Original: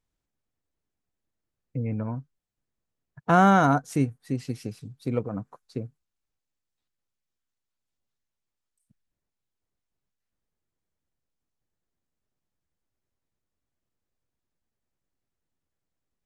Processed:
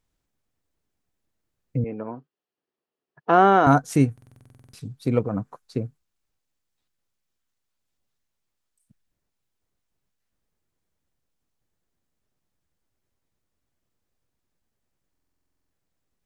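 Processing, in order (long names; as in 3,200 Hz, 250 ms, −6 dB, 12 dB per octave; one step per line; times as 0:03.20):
0:01.84–0:03.67: loudspeaker in its box 370–4,100 Hz, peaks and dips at 390 Hz +7 dB, 590 Hz −3 dB, 970 Hz −3 dB, 1,500 Hz −5 dB, 2,200 Hz −7 dB, 3,700 Hz −7 dB
buffer that repeats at 0:04.13/0:15.11, samples 2,048, times 12
level +5.5 dB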